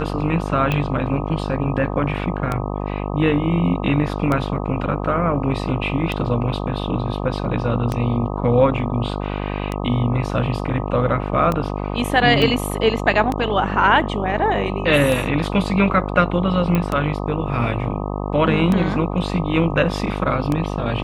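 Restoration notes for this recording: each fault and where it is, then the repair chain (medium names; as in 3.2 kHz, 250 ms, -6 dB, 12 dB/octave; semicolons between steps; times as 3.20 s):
buzz 50 Hz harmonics 25 -25 dBFS
tick 33 1/3 rpm -9 dBFS
12.42 s: dropout 2.6 ms
16.75 s: pop -8 dBFS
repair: de-click; de-hum 50 Hz, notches 25; interpolate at 12.42 s, 2.6 ms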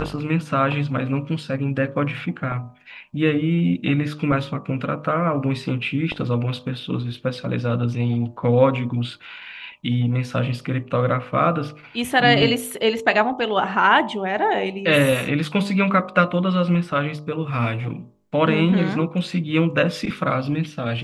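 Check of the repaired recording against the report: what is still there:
nothing left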